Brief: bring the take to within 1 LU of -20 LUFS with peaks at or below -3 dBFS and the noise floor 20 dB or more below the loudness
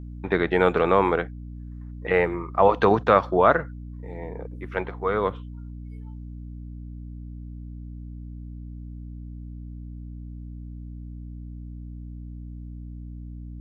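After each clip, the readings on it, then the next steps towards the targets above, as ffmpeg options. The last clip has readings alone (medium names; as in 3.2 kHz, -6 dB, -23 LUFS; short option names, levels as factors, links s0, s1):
hum 60 Hz; highest harmonic 300 Hz; hum level -35 dBFS; loudness -22.5 LUFS; peak level -2.5 dBFS; loudness target -20.0 LUFS
-> -af "bandreject=f=60:t=h:w=4,bandreject=f=120:t=h:w=4,bandreject=f=180:t=h:w=4,bandreject=f=240:t=h:w=4,bandreject=f=300:t=h:w=4"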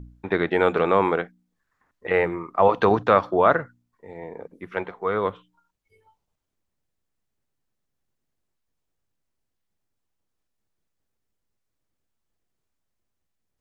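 hum not found; loudness -22.0 LUFS; peak level -2.5 dBFS; loudness target -20.0 LUFS
-> -af "volume=1.26,alimiter=limit=0.708:level=0:latency=1"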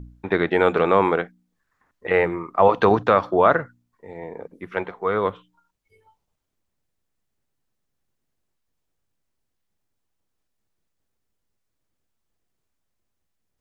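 loudness -20.5 LUFS; peak level -3.0 dBFS; noise floor -77 dBFS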